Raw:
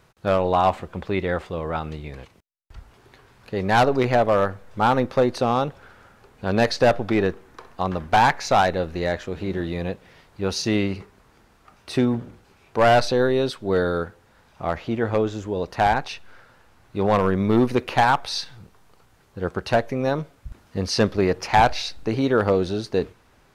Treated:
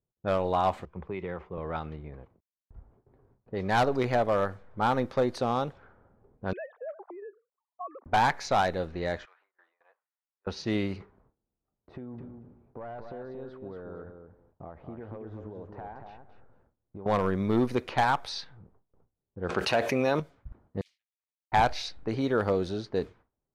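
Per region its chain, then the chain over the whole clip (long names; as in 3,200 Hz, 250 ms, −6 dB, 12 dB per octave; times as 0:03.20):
0:00.85–0:01.58: EQ curve with evenly spaced ripples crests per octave 0.76, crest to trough 6 dB + downward compressor 8 to 1, threshold −23 dBFS + multiband upward and downward expander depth 70%
0:06.53–0:08.06: three sine waves on the formant tracks + downward compressor 10 to 1, threshold −22 dBFS + resonant band-pass 1,000 Hz, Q 1.4
0:09.25–0:10.47: log-companded quantiser 6 bits + high-pass filter 1,200 Hz 24 dB per octave + high-shelf EQ 3,700 Hz −10.5 dB
0:11.95–0:17.06: downward compressor 16 to 1, threshold −30 dBFS + repeating echo 232 ms, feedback 17%, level −6 dB
0:19.49–0:20.20: high-pass filter 260 Hz 6 dB per octave + parametric band 2,600 Hz +9 dB 0.26 octaves + envelope flattener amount 70%
0:20.81–0:21.52: Butterworth high-pass 2,500 Hz 72 dB per octave + downward compressor 20 to 1, threshold −41 dBFS + every bin compressed towards the loudest bin 4 to 1
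whole clip: notch filter 2,700 Hz, Q 17; low-pass that shuts in the quiet parts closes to 490 Hz, open at −18.5 dBFS; noise gate with hold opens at −46 dBFS; level −7 dB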